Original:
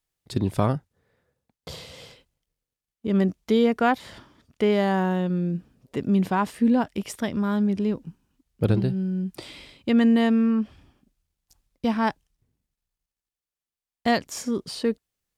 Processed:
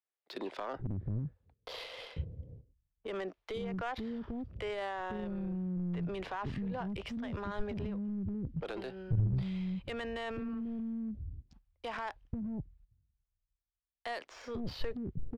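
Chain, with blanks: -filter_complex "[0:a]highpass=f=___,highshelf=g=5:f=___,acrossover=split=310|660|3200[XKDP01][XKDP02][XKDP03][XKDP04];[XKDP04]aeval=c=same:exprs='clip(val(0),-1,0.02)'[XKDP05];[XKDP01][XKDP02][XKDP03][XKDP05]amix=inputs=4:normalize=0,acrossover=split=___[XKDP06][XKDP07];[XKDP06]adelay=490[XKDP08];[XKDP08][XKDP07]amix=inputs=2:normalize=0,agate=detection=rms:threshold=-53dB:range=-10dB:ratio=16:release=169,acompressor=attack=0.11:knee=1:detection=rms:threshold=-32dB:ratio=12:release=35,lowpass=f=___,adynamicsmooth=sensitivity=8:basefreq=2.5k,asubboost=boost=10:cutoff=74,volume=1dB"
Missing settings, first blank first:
52, 2.6k, 360, 4.7k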